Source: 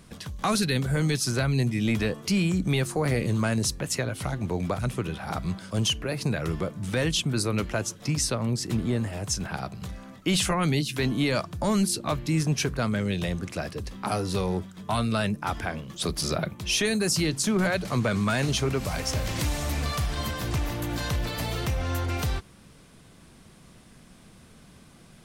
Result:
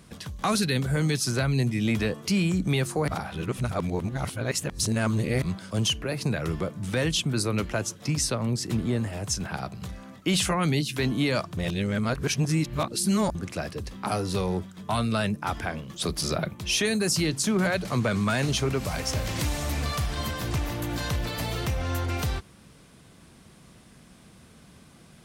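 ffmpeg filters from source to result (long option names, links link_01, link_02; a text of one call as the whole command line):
ffmpeg -i in.wav -filter_complex "[0:a]asplit=5[link_01][link_02][link_03][link_04][link_05];[link_01]atrim=end=3.082[link_06];[link_02]atrim=start=3.078:end=5.422,asetpts=PTS-STARTPTS,areverse[link_07];[link_03]atrim=start=5.418:end=11.572[link_08];[link_04]atrim=start=11.568:end=13.352,asetpts=PTS-STARTPTS,areverse[link_09];[link_05]atrim=start=13.348[link_10];[link_06][link_07]acrossfade=duration=0.004:curve1=hsin:curve2=hsin[link_11];[link_11][link_08]acrossfade=duration=0.004:curve1=hsin:curve2=hsin[link_12];[link_12][link_09]acrossfade=duration=0.004:curve1=hsin:curve2=hsin[link_13];[link_13][link_10]acrossfade=duration=0.004:curve1=hsin:curve2=hsin,highpass=40" out.wav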